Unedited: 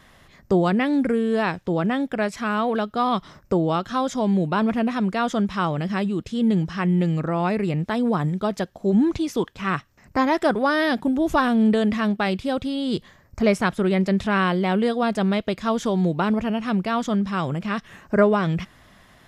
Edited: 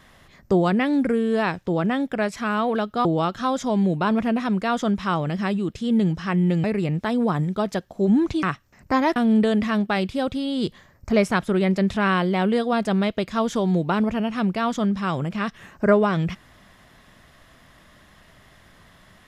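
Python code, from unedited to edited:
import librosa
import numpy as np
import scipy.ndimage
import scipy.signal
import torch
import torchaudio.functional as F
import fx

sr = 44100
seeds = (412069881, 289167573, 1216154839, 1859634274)

y = fx.edit(x, sr, fx.cut(start_s=3.05, length_s=0.51),
    fx.cut(start_s=7.15, length_s=0.34),
    fx.cut(start_s=9.28, length_s=0.4),
    fx.cut(start_s=10.41, length_s=1.05), tone=tone)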